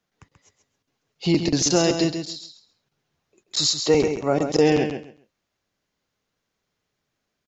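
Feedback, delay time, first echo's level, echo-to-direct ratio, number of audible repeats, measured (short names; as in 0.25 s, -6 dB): 20%, 0.134 s, -7.5 dB, -7.5 dB, 2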